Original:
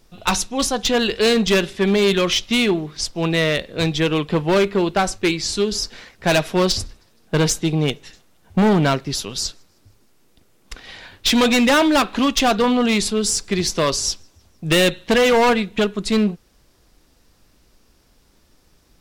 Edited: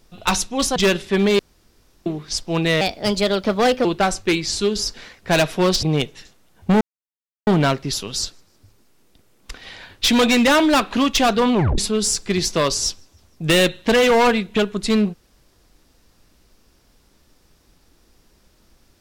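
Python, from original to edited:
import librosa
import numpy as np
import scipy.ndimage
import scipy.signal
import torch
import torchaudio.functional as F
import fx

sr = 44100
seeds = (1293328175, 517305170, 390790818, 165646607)

y = fx.edit(x, sr, fx.cut(start_s=0.76, length_s=0.68),
    fx.room_tone_fill(start_s=2.07, length_s=0.67),
    fx.speed_span(start_s=3.49, length_s=1.32, speed=1.27),
    fx.cut(start_s=6.79, length_s=0.92),
    fx.insert_silence(at_s=8.69, length_s=0.66),
    fx.tape_stop(start_s=12.75, length_s=0.25), tone=tone)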